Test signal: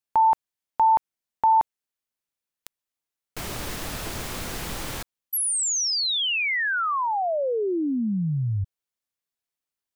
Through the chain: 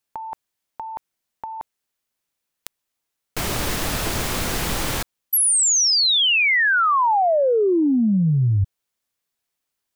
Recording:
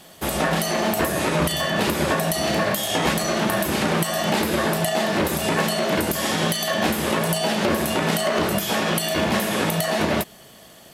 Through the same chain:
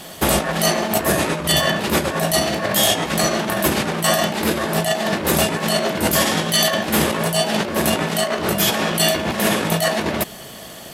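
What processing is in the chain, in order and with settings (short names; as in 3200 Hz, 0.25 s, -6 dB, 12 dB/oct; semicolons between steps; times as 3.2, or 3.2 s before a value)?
negative-ratio compressor -25 dBFS, ratio -0.5; gain +6.5 dB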